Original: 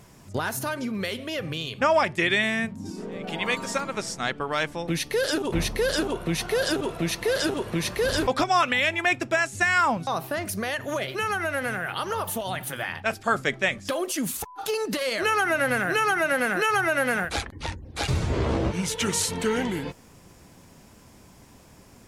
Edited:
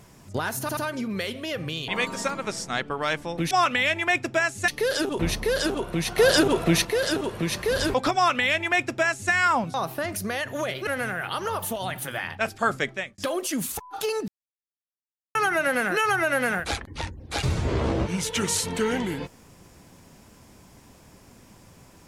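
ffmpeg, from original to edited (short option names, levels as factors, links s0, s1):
-filter_complex "[0:a]asplit=12[s0][s1][s2][s3][s4][s5][s6][s7][s8][s9][s10][s11];[s0]atrim=end=0.692[s12];[s1]atrim=start=0.608:end=0.692[s13];[s2]atrim=start=0.608:end=1.722[s14];[s3]atrim=start=3.378:end=5.012[s15];[s4]atrim=start=8.478:end=9.652[s16];[s5]atrim=start=5.008:end=6.512[s17];[s6]atrim=start=6.508:end=7.182,asetpts=PTS-STARTPTS,volume=2.11[s18];[s7]atrim=start=7.178:end=11.202[s19];[s8]atrim=start=11.518:end=13.83,asetpts=PTS-STARTPTS,afade=t=out:st=1.902:d=0.41[s20];[s9]atrim=start=13.83:end=14.93,asetpts=PTS-STARTPTS,afade=t=in:d=0.004:c=hsin,afade=t=out:st=1.096:d=0.004:c=hsin[s21];[s10]atrim=start=14.93:end=16,asetpts=PTS-STARTPTS,volume=0[s22];[s11]atrim=start=16,asetpts=PTS-STARTPTS,afade=t=in:d=0.004:c=hsin[s23];[s12][s13]acrossfade=d=0.004:c1=hsin:c2=hsin[s24];[s24][s14]acrossfade=d=0.004:c1=hsin:c2=hsin[s25];[s25][s15]acrossfade=d=0.004:c1=hsin:c2=hsin[s26];[s26][s16]acrossfade=d=0.004:c1=hsin:c2=hsin[s27];[s27][s17]acrossfade=d=0.004:c1=hsin:c2=hsin[s28];[s28][s18]acrossfade=d=0.004:c1=hsin:c2=hsin[s29];[s29][s19]acrossfade=d=0.004:c1=hsin:c2=hsin[s30];[s20][s21][s22][s23]concat=n=4:v=0:a=1[s31];[s30][s31]acrossfade=d=0.004:c1=hsin:c2=hsin"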